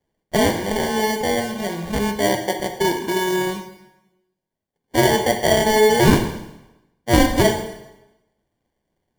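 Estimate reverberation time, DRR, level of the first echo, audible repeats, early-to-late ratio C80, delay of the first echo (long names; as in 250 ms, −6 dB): 0.95 s, 5.0 dB, no echo audible, no echo audible, 10.0 dB, no echo audible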